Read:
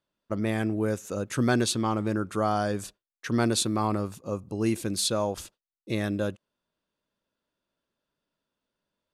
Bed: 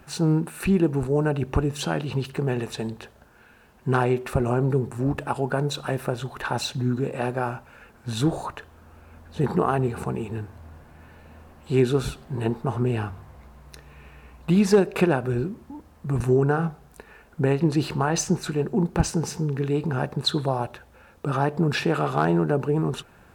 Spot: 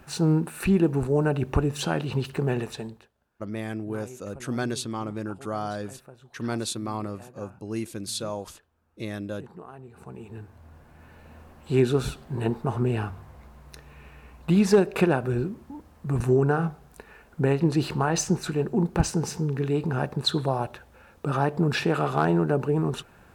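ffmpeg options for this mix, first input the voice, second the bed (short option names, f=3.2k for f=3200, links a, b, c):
-filter_complex "[0:a]adelay=3100,volume=-5dB[a];[1:a]volume=20dB,afade=t=out:st=2.56:d=0.53:silence=0.0891251,afade=t=in:st=9.88:d=1.43:silence=0.0944061[b];[a][b]amix=inputs=2:normalize=0"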